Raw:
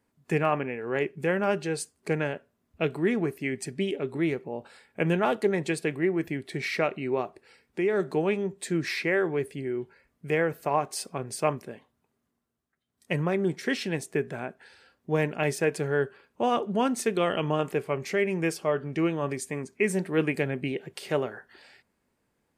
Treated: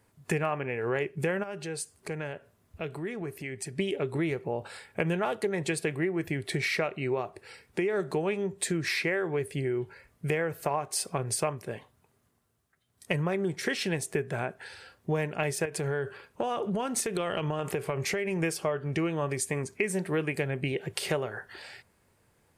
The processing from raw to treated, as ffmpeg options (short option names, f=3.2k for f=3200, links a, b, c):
-filter_complex "[0:a]asplit=3[a][b][c];[a]afade=t=out:st=1.42:d=0.02[d];[b]acompressor=threshold=-51dB:ratio=2:attack=3.2:release=140:knee=1:detection=peak,afade=t=in:st=1.42:d=0.02,afade=t=out:st=3.78:d=0.02[e];[c]afade=t=in:st=3.78:d=0.02[f];[d][e][f]amix=inputs=3:normalize=0,asettb=1/sr,asplit=3[g][h][i];[g]atrim=end=15.654[j];[h]atrim=start=15.65:end=18.43,asetpts=PTS-STARTPTS,afade=t=in:d=0.004:c=qsin,afade=t=out:st=2.776:d=0.004:c=qsin,acompressor=threshold=-29dB:ratio=6:attack=3.2:release=140:knee=1:detection=peak[k];[i]atrim=start=18.426[l];[j][k]acrossfade=d=0.004:c1=hsin:c2=qsin[m];[m][l]acrossfade=d=0.004:c1=qsin:c2=hsin,equalizer=f=100:t=o:w=0.67:g=7,equalizer=f=250:t=o:w=0.67:g=-7,equalizer=f=10k:t=o:w=0.67:g=4,acompressor=threshold=-35dB:ratio=5,volume=8dB"